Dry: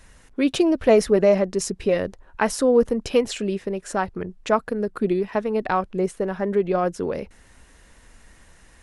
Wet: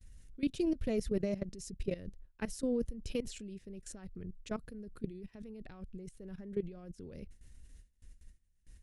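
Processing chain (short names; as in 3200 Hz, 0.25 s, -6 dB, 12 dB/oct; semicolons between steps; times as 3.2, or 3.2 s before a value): high shelf 4000 Hz +4 dB; level quantiser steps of 18 dB; gate with hold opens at -44 dBFS; passive tone stack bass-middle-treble 10-0-1; gain +9.5 dB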